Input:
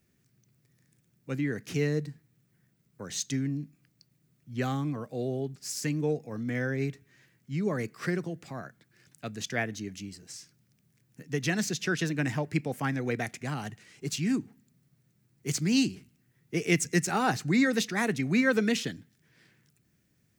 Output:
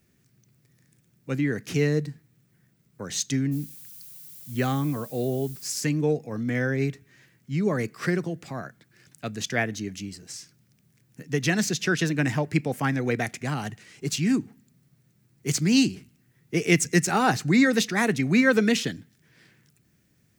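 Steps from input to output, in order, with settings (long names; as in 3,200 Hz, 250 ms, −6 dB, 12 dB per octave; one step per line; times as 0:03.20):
0:03.51–0:05.67: background noise violet −50 dBFS
level +5 dB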